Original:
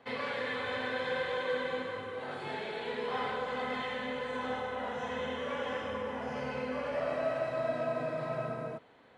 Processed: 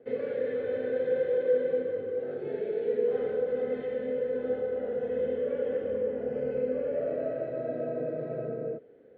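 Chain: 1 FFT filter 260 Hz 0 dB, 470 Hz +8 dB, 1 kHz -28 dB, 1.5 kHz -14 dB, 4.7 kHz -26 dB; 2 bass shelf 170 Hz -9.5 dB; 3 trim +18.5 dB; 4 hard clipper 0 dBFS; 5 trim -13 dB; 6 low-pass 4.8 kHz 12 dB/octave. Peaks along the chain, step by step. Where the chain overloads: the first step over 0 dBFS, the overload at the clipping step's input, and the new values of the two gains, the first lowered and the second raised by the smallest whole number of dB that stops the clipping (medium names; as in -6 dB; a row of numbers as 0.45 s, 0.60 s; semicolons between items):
-21.0 dBFS, -22.0 dBFS, -3.5 dBFS, -3.5 dBFS, -16.5 dBFS, -16.5 dBFS; nothing clips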